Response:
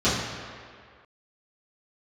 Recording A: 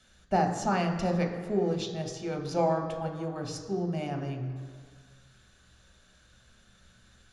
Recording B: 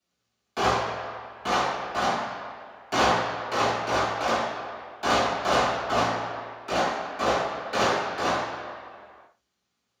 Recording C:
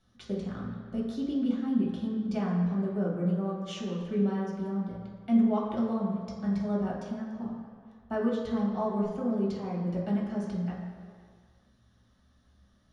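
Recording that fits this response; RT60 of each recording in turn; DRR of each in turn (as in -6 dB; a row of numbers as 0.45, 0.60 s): B; 2.0, 2.0, 2.0 s; 2.5, -13.5, -5.0 dB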